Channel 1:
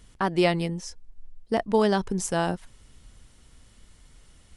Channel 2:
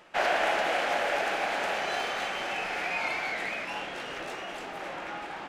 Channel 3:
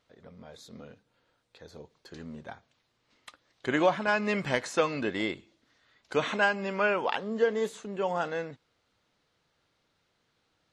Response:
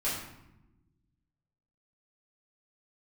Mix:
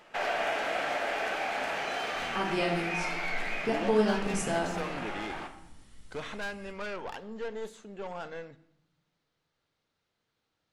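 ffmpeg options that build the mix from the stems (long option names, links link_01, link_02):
-filter_complex "[0:a]adelay=2150,volume=-6.5dB,asplit=2[link_01][link_02];[link_02]volume=-7.5dB[link_03];[1:a]volume=-3dB,asplit=2[link_04][link_05];[link_05]volume=-10.5dB[link_06];[2:a]aeval=exprs='(tanh(22.4*val(0)+0.4)-tanh(0.4))/22.4':channel_layout=same,volume=-6.5dB,asplit=2[link_07][link_08];[link_08]volume=-20.5dB[link_09];[link_01][link_04]amix=inputs=2:normalize=0,acompressor=threshold=-34dB:ratio=6,volume=0dB[link_10];[3:a]atrim=start_sample=2205[link_11];[link_03][link_06][link_09]amix=inputs=3:normalize=0[link_12];[link_12][link_11]afir=irnorm=-1:irlink=0[link_13];[link_07][link_10][link_13]amix=inputs=3:normalize=0"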